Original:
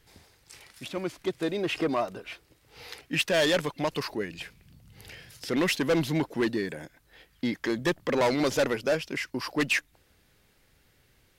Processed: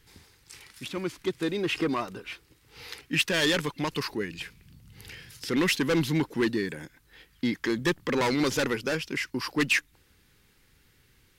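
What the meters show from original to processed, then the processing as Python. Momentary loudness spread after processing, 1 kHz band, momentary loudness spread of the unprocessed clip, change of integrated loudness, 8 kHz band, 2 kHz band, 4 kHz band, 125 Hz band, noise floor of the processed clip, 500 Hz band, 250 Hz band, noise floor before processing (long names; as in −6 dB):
18 LU, −1.0 dB, 18 LU, +0.5 dB, +2.0 dB, +1.5 dB, +2.0 dB, +2.0 dB, −63 dBFS, −2.5 dB, +1.5 dB, −65 dBFS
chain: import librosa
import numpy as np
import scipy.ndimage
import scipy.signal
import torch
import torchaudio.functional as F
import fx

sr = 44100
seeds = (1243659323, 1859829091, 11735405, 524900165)

y = fx.peak_eq(x, sr, hz=640.0, db=-12.5, octaves=0.51)
y = F.gain(torch.from_numpy(y), 2.0).numpy()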